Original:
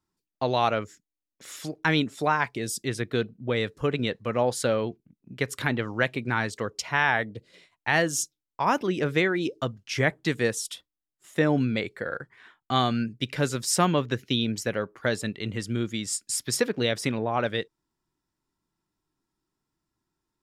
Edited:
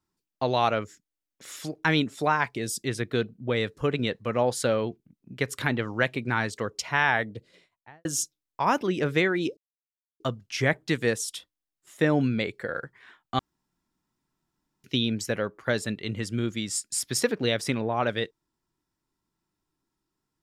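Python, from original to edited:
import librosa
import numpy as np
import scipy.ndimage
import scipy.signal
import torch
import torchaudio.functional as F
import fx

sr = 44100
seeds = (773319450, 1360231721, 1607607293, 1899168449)

y = fx.studio_fade_out(x, sr, start_s=7.35, length_s=0.7)
y = fx.edit(y, sr, fx.insert_silence(at_s=9.57, length_s=0.63),
    fx.room_tone_fill(start_s=12.76, length_s=1.45), tone=tone)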